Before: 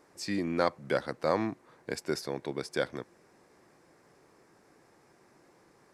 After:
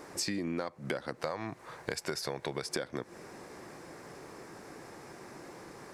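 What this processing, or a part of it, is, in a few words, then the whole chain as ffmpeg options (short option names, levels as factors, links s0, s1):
serial compression, peaks first: -filter_complex "[0:a]asettb=1/sr,asplit=3[s0][s1][s2];[s0]atrim=end=1.224[s3];[s1]atrim=start=1.22:end=2.67,asetpts=PTS-STARTPTS,afade=t=in:d=0.004:c=qsin,afade=t=out:st=1.446:d=0.004:c=qsin,equalizer=f=270:t=o:w=1.2:g=-10[s4];[s2]atrim=start=2.666[s5];[s3][s4]acrossfade=d=0.004:c1=hsin:c2=qsin[s6];[s6][s5]acrossfade=d=0.004:c1=qsin:c2=hsin,acompressor=threshold=0.01:ratio=6,acompressor=threshold=0.00501:ratio=3,volume=4.73"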